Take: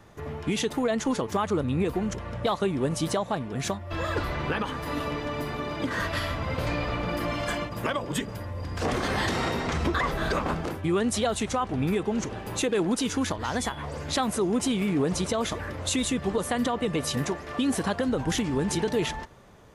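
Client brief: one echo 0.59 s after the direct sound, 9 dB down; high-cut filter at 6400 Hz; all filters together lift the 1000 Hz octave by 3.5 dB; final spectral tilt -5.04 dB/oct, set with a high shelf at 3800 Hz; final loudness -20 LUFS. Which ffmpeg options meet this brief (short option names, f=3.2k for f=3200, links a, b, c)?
-af "lowpass=6.4k,equalizer=f=1k:t=o:g=5,highshelf=f=3.8k:g=-8,aecho=1:1:590:0.355,volume=7.5dB"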